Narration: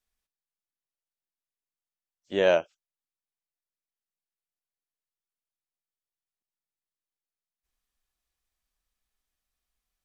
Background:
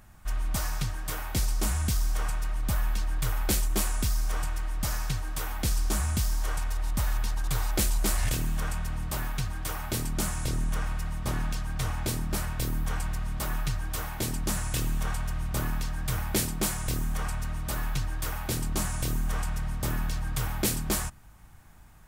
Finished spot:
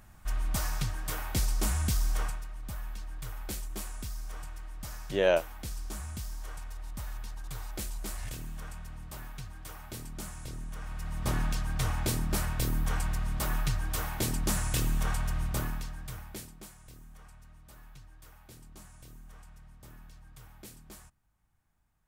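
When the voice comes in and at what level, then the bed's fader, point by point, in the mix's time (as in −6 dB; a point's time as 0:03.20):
2.80 s, −3.0 dB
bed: 0:02.22 −1.5 dB
0:02.47 −11.5 dB
0:10.77 −11.5 dB
0:11.26 0 dB
0:15.44 0 dB
0:16.73 −22 dB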